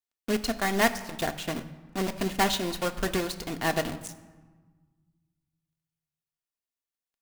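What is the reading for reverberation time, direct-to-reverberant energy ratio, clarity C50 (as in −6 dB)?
1.4 s, 7.0 dB, 13.5 dB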